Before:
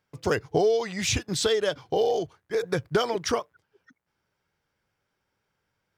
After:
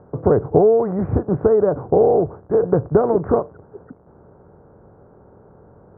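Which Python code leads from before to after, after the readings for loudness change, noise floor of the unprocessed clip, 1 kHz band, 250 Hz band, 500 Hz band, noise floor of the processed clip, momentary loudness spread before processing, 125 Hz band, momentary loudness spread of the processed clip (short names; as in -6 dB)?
+8.5 dB, -80 dBFS, +7.0 dB, +11.5 dB, +9.5 dB, -50 dBFS, 6 LU, +11.5 dB, 6 LU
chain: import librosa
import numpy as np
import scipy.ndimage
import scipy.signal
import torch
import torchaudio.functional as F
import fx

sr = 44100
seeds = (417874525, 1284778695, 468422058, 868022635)

y = fx.bin_compress(x, sr, power=0.6)
y = scipy.signal.sosfilt(scipy.signal.bessel(8, 680.0, 'lowpass', norm='mag', fs=sr, output='sos'), y)
y = F.gain(torch.from_numpy(y), 8.5).numpy()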